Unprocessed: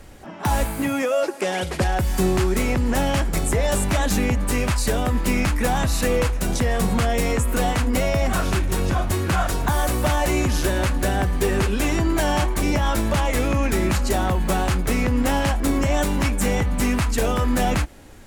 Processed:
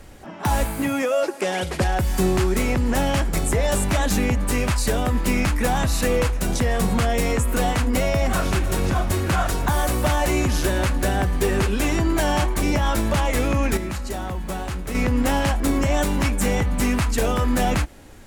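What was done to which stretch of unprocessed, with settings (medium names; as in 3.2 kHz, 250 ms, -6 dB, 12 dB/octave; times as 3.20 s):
7.99–8.61 s: echo throw 310 ms, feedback 80%, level -14.5 dB
13.77–14.95 s: feedback comb 63 Hz, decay 1.7 s, harmonics odd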